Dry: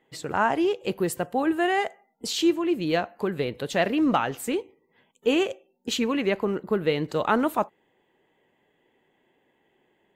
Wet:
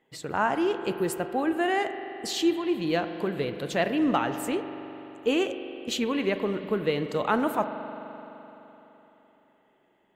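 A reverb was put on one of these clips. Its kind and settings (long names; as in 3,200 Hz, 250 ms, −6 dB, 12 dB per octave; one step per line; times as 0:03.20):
spring reverb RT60 3.6 s, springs 42 ms, chirp 35 ms, DRR 8.5 dB
level −2.5 dB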